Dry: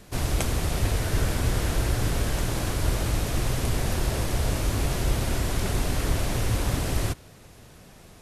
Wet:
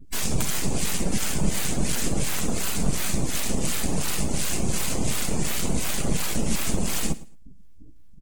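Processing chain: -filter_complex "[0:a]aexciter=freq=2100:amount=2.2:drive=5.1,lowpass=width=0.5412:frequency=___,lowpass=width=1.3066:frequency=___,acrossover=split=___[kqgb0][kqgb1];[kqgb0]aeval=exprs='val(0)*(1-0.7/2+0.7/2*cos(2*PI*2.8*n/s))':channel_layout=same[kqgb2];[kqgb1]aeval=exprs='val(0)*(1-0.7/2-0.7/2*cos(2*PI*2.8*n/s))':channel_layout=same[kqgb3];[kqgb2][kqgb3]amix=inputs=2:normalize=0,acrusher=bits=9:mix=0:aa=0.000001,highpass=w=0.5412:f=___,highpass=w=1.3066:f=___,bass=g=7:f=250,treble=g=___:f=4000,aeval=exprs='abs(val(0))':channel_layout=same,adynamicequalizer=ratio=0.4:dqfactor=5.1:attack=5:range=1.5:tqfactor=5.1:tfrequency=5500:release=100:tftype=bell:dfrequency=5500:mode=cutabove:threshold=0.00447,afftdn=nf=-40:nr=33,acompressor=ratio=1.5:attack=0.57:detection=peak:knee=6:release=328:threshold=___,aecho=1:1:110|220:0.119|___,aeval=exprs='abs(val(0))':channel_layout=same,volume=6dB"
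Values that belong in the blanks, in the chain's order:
9200, 9200, 1100, 60, 60, 5, -28dB, 0.0226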